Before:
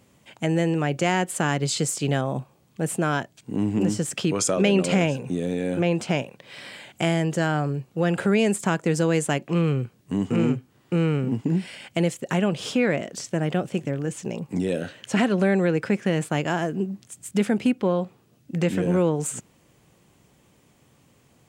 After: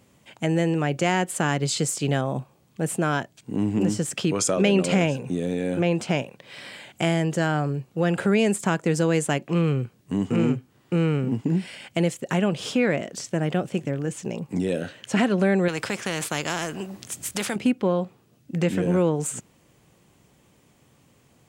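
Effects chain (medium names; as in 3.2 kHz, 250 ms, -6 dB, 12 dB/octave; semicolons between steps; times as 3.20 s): 15.68–17.56 s: spectrum-flattening compressor 2:1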